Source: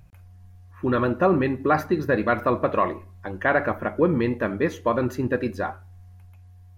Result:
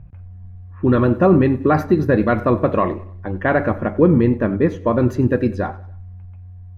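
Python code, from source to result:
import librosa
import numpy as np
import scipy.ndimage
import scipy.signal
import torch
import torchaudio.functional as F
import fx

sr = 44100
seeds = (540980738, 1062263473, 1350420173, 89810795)

y = fx.low_shelf(x, sr, hz=440.0, db=11.5)
y = fx.env_lowpass(y, sr, base_hz=1900.0, full_db=-12.0)
y = fx.high_shelf(y, sr, hz=3400.0, db=-8.5, at=(4.17, 4.98))
y = fx.echo_feedback(y, sr, ms=95, feedback_pct=45, wet_db=-20.5)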